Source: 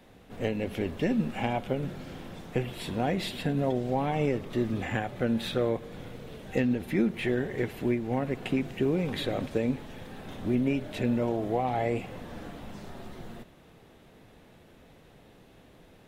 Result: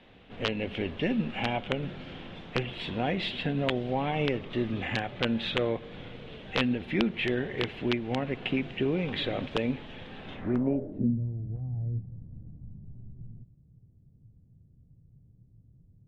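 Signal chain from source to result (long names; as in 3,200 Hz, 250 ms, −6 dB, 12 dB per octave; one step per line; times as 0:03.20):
wrap-around overflow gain 16 dB
low-pass filter sweep 3,100 Hz → 120 Hz, 0:10.31–0:11.22
level −1.5 dB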